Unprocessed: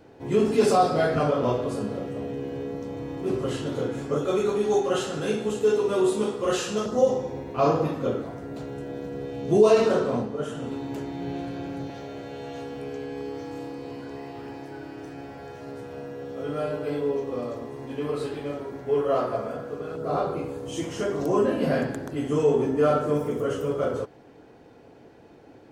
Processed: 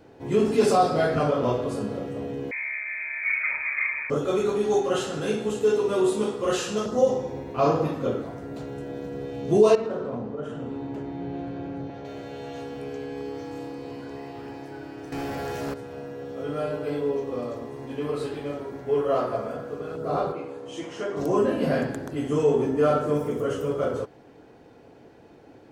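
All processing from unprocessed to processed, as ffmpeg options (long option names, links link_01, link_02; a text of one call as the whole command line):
ffmpeg -i in.wav -filter_complex "[0:a]asettb=1/sr,asplit=3[link_01][link_02][link_03];[link_01]atrim=end=2.514[link_04];[link_02]atrim=start=2.51:end=4.1,asetpts=PTS-STARTPTS,afade=type=in:duration=0.004:curve=qsin,afade=type=out:start_time=1.586:duration=0.004:curve=qsin,equalizer=frequency=810:width_type=o:width=0.43:gain=13,lowpass=frequency=2200:width_type=q:width=0.5098,lowpass=frequency=2200:width_type=q:width=0.6013,lowpass=frequency=2200:width_type=q:width=0.9,lowpass=frequency=2200:width_type=q:width=2.563,afreqshift=-2600[link_05];[link_03]atrim=start=4.096[link_06];[link_04][link_05]acrossfade=duration=0.004:curve1=hsin:curve2=qsin[link_07];[link_07][link_06]acrossfade=duration=0.004:curve1=qsin:curve2=hsin,asettb=1/sr,asplit=3[link_08][link_09][link_10];[link_08]atrim=end=9.754[link_11];[link_09]atrim=start=9.75:end=12.05,asetpts=PTS-STARTPTS,afade=type=in:duration=0.004:curve=qsin,afade=type=out:start_time=2.296:duration=0.004:curve=qsin,lowpass=frequency=1500:poles=1,acompressor=threshold=-28dB:ratio=3:attack=3.2:release=140:knee=1:detection=peak[link_12];[link_10]atrim=start=12.046[link_13];[link_11][link_12]acrossfade=duration=0.004:curve1=hsin:curve2=qsin[link_14];[link_14][link_13]acrossfade=duration=0.004:curve1=qsin:curve2=hsin,asettb=1/sr,asplit=3[link_15][link_16][link_17];[link_15]atrim=end=15.124[link_18];[link_16]atrim=start=15.12:end=15.74,asetpts=PTS-STARTPTS,afade=type=in:duration=0.004:curve=qsin,afade=type=out:start_time=0.616:duration=0.004:curve=qsin,highshelf=frequency=6800:gain=11.5,aeval=exprs='0.0473*sin(PI/2*2.24*val(0)/0.0473)':channel_layout=same[link_19];[link_17]atrim=start=15.736[link_20];[link_18][link_19]acrossfade=duration=0.004:curve1=hsin:curve2=qsin[link_21];[link_21][link_20]acrossfade=duration=0.004:curve1=qsin:curve2=hsin,asettb=1/sr,asplit=3[link_22][link_23][link_24];[link_22]atrim=end=20.324[link_25];[link_23]atrim=start=20.32:end=21.17,asetpts=PTS-STARTPTS,afade=type=in:duration=0.004:curve=qsin,afade=type=out:start_time=0.846:duration=0.004:curve=qsin,highpass=frequency=460:poles=1,aemphasis=mode=reproduction:type=50fm[link_26];[link_24]atrim=start=21.166[link_27];[link_25][link_26]acrossfade=duration=0.004:curve1=hsin:curve2=qsin[link_28];[link_28][link_27]acrossfade=duration=0.004:curve1=qsin:curve2=hsin" out.wav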